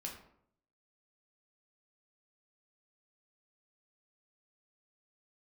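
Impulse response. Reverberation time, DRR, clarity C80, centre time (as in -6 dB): 0.70 s, -1.0 dB, 10.0 dB, 27 ms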